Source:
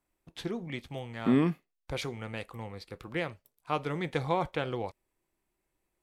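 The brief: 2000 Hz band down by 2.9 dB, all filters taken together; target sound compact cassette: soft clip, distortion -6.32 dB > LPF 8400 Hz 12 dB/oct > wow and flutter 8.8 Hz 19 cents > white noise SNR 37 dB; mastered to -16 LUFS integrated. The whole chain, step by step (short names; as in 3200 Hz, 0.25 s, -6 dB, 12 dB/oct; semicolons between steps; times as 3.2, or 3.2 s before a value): bell 2000 Hz -3.5 dB; soft clip -29.5 dBFS; LPF 8400 Hz 12 dB/oct; wow and flutter 8.8 Hz 19 cents; white noise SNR 37 dB; gain +23 dB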